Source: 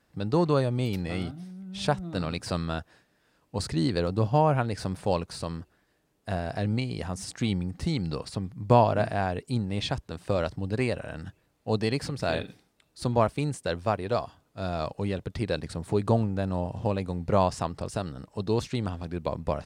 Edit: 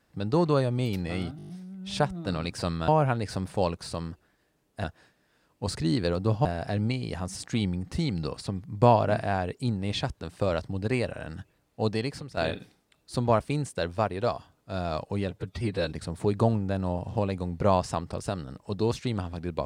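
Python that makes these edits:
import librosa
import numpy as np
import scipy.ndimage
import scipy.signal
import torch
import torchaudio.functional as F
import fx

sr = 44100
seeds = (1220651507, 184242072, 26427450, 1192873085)

y = fx.edit(x, sr, fx.stutter(start_s=1.37, slice_s=0.02, count=7),
    fx.move(start_s=2.76, length_s=1.61, to_s=6.33),
    fx.fade_out_to(start_s=11.71, length_s=0.54, floor_db=-11.5),
    fx.stretch_span(start_s=15.19, length_s=0.4, factor=1.5), tone=tone)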